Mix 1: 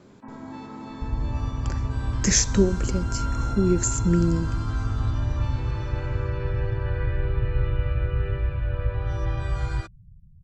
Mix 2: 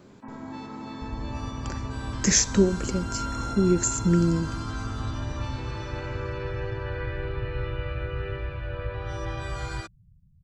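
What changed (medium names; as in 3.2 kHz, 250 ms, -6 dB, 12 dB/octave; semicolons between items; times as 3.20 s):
first sound: add treble shelf 3.7 kHz +7 dB; second sound: add tilt EQ +2 dB/octave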